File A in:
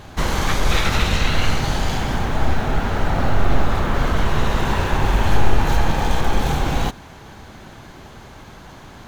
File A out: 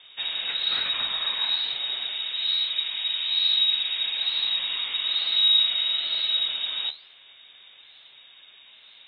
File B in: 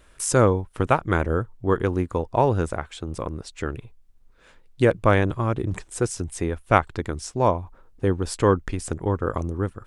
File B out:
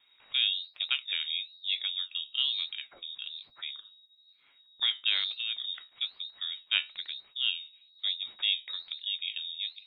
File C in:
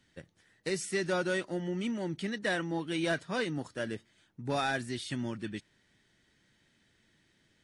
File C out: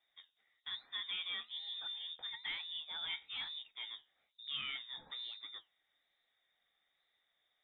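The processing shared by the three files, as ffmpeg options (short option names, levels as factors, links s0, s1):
-af "lowpass=f=3200:t=q:w=0.5098,lowpass=f=3200:t=q:w=0.6013,lowpass=f=3200:t=q:w=0.9,lowpass=f=3200:t=q:w=2.563,afreqshift=-3800,flanger=delay=7.1:depth=6.8:regen=70:speed=1.1:shape=sinusoidal,volume=0.473"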